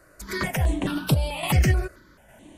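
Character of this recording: random-step tremolo; notches that jump at a steady rate 4.6 Hz 880–6500 Hz

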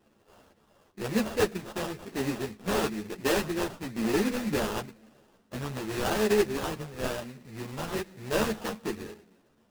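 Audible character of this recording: a buzz of ramps at a fixed pitch in blocks of 16 samples; phasing stages 12, 1 Hz, lowest notch 690–1700 Hz; aliases and images of a low sample rate 2200 Hz, jitter 20%; a shimmering, thickened sound

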